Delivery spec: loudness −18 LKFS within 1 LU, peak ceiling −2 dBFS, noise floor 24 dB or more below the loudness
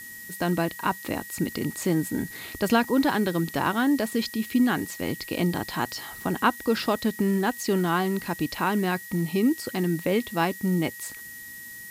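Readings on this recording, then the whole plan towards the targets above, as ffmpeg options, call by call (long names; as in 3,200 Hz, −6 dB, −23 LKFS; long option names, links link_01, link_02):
interfering tone 1,900 Hz; level of the tone −41 dBFS; background noise floor −41 dBFS; target noise floor −50 dBFS; integrated loudness −26.0 LKFS; sample peak −9.0 dBFS; target loudness −18.0 LKFS
→ -af "bandreject=frequency=1900:width=30"
-af "afftdn=noise_reduction=9:noise_floor=-41"
-af "volume=8dB,alimiter=limit=-2dB:level=0:latency=1"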